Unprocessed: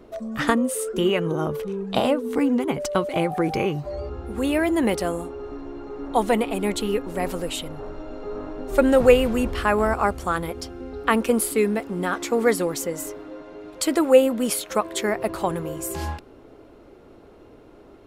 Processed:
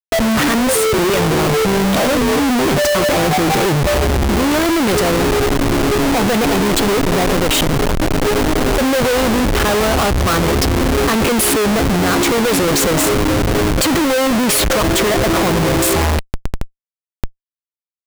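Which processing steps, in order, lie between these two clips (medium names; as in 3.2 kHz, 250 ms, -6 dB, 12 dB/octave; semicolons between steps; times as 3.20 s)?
in parallel at +2 dB: compression 4:1, threshold -29 dBFS, peak gain reduction 17 dB; on the sum: Schmitt trigger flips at -30.5 dBFS; trim +6.5 dB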